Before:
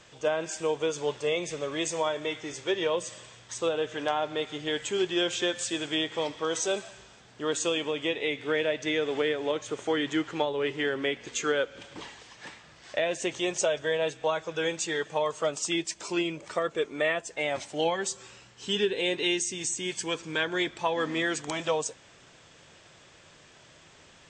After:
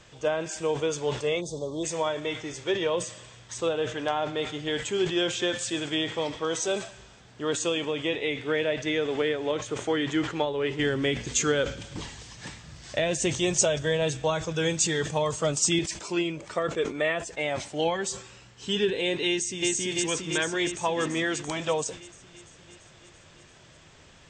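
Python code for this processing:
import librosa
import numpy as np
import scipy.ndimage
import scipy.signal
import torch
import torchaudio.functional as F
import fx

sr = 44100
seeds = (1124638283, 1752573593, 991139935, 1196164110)

y = fx.ellip_bandstop(x, sr, low_hz=950.0, high_hz=3900.0, order=3, stop_db=40, at=(1.4, 1.83), fade=0.02)
y = fx.bass_treble(y, sr, bass_db=10, treble_db=9, at=(10.79, 15.79))
y = fx.echo_throw(y, sr, start_s=19.28, length_s=0.41, ms=340, feedback_pct=70, wet_db=-0.5)
y = fx.low_shelf(y, sr, hz=140.0, db=9.5)
y = fx.sustainer(y, sr, db_per_s=120.0)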